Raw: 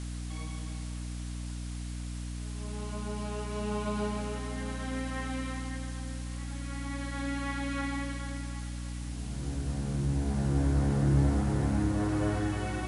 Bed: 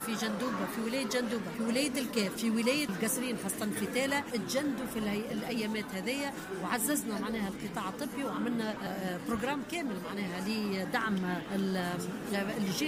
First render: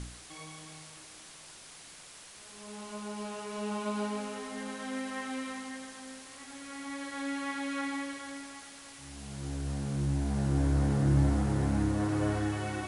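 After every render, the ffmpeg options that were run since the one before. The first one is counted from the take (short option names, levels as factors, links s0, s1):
-af "bandreject=f=60:t=h:w=4,bandreject=f=120:t=h:w=4,bandreject=f=180:t=h:w=4,bandreject=f=240:t=h:w=4,bandreject=f=300:t=h:w=4,bandreject=f=360:t=h:w=4,bandreject=f=420:t=h:w=4,bandreject=f=480:t=h:w=4"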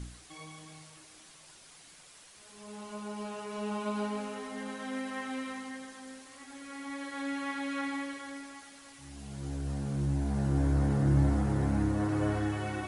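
-af "afftdn=nr=6:nf=-51"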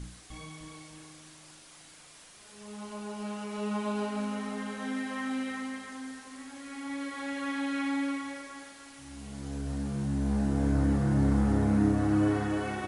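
-filter_complex "[0:a]asplit=2[s0][s1];[s1]adelay=39,volume=0.562[s2];[s0][s2]amix=inputs=2:normalize=0,asplit=2[s3][s4];[s4]adelay=303,lowpass=f=2000:p=1,volume=0.596,asplit=2[s5][s6];[s6]adelay=303,lowpass=f=2000:p=1,volume=0.35,asplit=2[s7][s8];[s8]adelay=303,lowpass=f=2000:p=1,volume=0.35,asplit=2[s9][s10];[s10]adelay=303,lowpass=f=2000:p=1,volume=0.35[s11];[s3][s5][s7][s9][s11]amix=inputs=5:normalize=0"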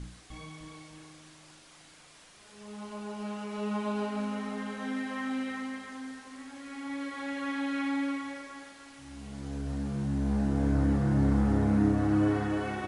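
-af "highshelf=f=9000:g=-11.5"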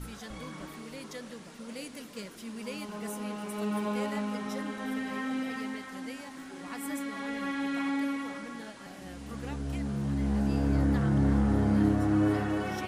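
-filter_complex "[1:a]volume=0.282[s0];[0:a][s0]amix=inputs=2:normalize=0"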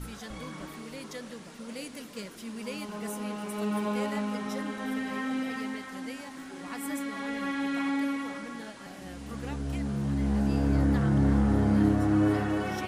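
-af "volume=1.19"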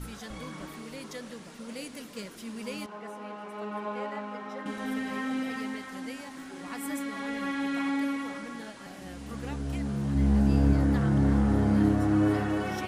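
-filter_complex "[0:a]asettb=1/sr,asplit=3[s0][s1][s2];[s0]atrim=end=2.864[s3];[s1]atrim=start=2.86:end=4.66,asetpts=PTS-STARTPTS,afade=t=in:d=0.004:c=qsin,afade=t=out:st=1.796:d=0.004:c=qsin,bandpass=f=930:t=q:w=0.7[s4];[s2]atrim=start=4.656[s5];[s3][s4]acrossfade=d=0.004:c1=hsin:c2=qsin[s6];[s6][s5]acrossfade=d=0.004:c1=qsin:c2=hsin,asettb=1/sr,asplit=3[s7][s8][s9];[s7]atrim=end=10.154[s10];[s8]atrim=start=10.15:end=10.73,asetpts=PTS-STARTPTS,afade=t=in:d=0.004:c=qsin,afade=t=out:st=0.576:d=0.004:c=qsin,lowshelf=f=200:g=6.5[s11];[s9]atrim=start=10.726[s12];[s10][s11]acrossfade=d=0.004:c1=hsin:c2=qsin[s13];[s13][s12]acrossfade=d=0.004:c1=qsin:c2=hsin"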